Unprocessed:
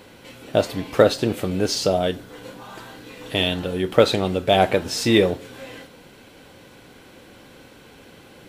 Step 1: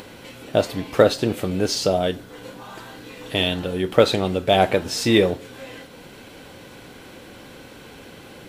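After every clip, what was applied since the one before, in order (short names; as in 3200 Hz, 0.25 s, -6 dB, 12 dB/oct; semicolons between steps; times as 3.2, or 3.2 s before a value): upward compressor, threshold -35 dBFS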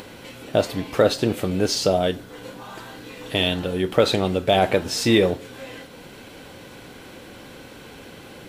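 maximiser +5 dB; gain -4.5 dB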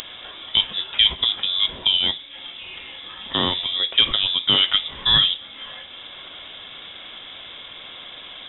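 upward compressor, threshold -32 dBFS; inverted band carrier 3700 Hz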